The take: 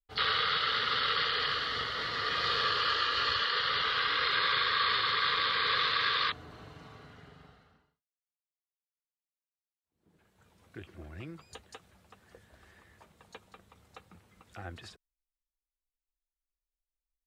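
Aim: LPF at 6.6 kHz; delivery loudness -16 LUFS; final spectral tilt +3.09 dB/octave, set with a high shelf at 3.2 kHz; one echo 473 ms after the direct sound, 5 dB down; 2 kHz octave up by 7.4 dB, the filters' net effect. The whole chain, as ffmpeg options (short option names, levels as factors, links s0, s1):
-af "lowpass=6600,equalizer=f=2000:t=o:g=7,highshelf=f=3200:g=7,aecho=1:1:473:0.562,volume=1.88"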